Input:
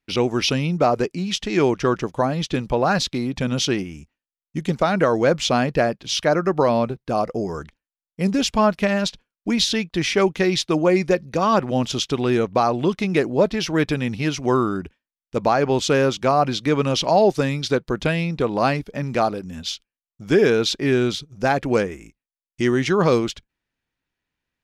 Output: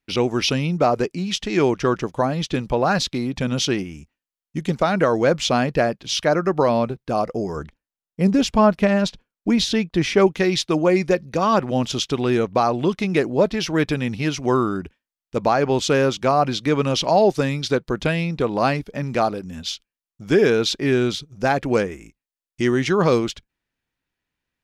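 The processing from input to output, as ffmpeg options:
ffmpeg -i in.wav -filter_complex "[0:a]asettb=1/sr,asplit=3[link_01][link_02][link_03];[link_01]atrim=end=7.564[link_04];[link_02]atrim=start=7.56:end=10.27,asetpts=PTS-STARTPTS,afade=type=in:duration=0.004:curve=qsin,afade=type=out:start_time=2.706:duration=0.004:curve=qsin,tiltshelf=frequency=1400:gain=3.5[link_05];[link_03]atrim=start=10.266[link_06];[link_04][link_05]acrossfade=duration=0.004:curve1=hsin:curve2=qsin[link_07];[link_07][link_06]acrossfade=duration=0.004:curve1=qsin:curve2=hsin" out.wav

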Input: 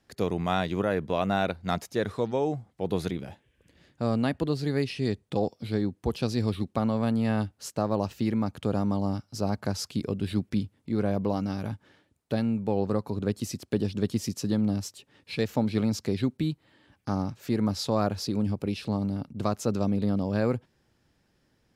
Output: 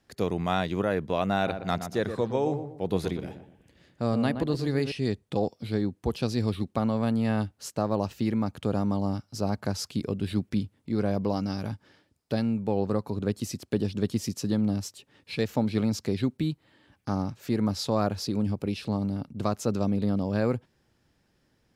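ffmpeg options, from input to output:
ffmpeg -i in.wav -filter_complex "[0:a]asettb=1/sr,asplit=3[link_01][link_02][link_03];[link_01]atrim=end=1.354[link_04];[link_02]atrim=start=1.35:end=4.92,asetpts=PTS-STARTPTS,afade=type=in:duration=0.004:curve=qsin,afade=type=out:start_time=3.566:duration=0.004:curve=qsin,asplit=2[link_05][link_06];[link_06]adelay=120,lowpass=frequency=1400:poles=1,volume=-8dB,asplit=2[link_07][link_08];[link_08]adelay=120,lowpass=frequency=1400:poles=1,volume=0.36,asplit=2[link_09][link_10];[link_10]adelay=120,lowpass=frequency=1400:poles=1,volume=0.36,asplit=2[link_11][link_12];[link_12]adelay=120,lowpass=frequency=1400:poles=1,volume=0.36[link_13];[link_05][link_07][link_09][link_11][link_13]amix=inputs=5:normalize=0,atrim=end_sample=157437[link_14];[link_03]atrim=start=4.916[link_15];[link_04][link_14]acrossfade=duration=0.004:curve1=hsin:curve2=qsin[link_16];[link_16][link_15]acrossfade=duration=0.004:curve1=qsin:curve2=hsin,asettb=1/sr,asplit=3[link_17][link_18][link_19];[link_17]atrim=end=10.904[link_20];[link_18]atrim=start=10.9:end=12.54,asetpts=PTS-STARTPTS,afade=type=in:duration=0.004:curve=qsin,afade=type=out:start_time=1.636:duration=0.004:curve=qsin,equalizer=frequency=5000:width_type=o:width=0.28:gain=8.5[link_21];[link_19]atrim=start=12.536[link_22];[link_20][link_21]acrossfade=duration=0.004:curve1=hsin:curve2=qsin[link_23];[link_23][link_22]acrossfade=duration=0.004:curve1=qsin:curve2=hsin" out.wav

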